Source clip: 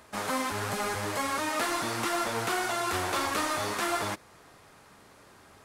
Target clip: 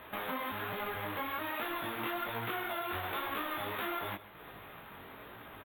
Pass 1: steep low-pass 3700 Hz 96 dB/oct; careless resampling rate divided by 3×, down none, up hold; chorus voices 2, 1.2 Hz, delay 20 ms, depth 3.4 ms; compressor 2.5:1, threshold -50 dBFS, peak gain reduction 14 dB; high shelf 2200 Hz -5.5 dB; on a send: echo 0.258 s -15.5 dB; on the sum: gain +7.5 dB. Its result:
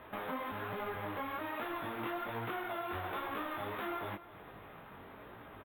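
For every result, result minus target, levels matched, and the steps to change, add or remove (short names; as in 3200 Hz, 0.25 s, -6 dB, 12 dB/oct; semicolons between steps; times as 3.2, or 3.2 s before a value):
echo 0.119 s late; 4000 Hz band -4.5 dB
change: echo 0.139 s -15.5 dB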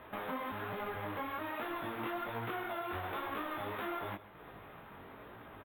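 4000 Hz band -4.5 dB
change: high shelf 2200 Hz +5 dB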